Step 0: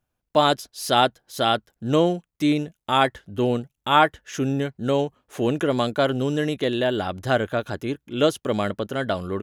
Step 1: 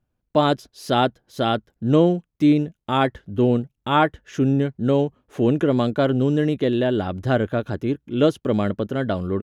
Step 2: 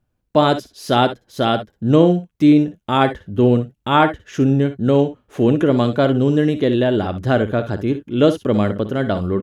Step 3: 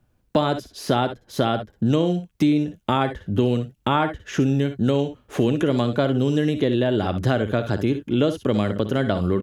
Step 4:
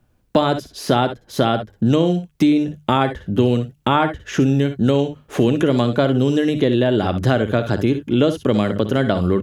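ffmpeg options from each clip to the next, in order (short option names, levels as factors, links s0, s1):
-af "firequalizer=gain_entry='entry(240,0);entry(720,-7);entry(8800,-16)':delay=0.05:min_phase=1,volume=1.88"
-af "aecho=1:1:57|67:0.224|0.168,volume=1.5"
-filter_complex "[0:a]acrossover=split=87|2400[s0][s1][s2];[s0]acompressor=threshold=0.00708:ratio=4[s3];[s1]acompressor=threshold=0.0501:ratio=4[s4];[s2]acompressor=threshold=0.00708:ratio=4[s5];[s3][s4][s5]amix=inputs=3:normalize=0,volume=2.11"
-af "bandreject=f=50:t=h:w=6,bandreject=f=100:t=h:w=6,bandreject=f=150:t=h:w=6,volume=1.58"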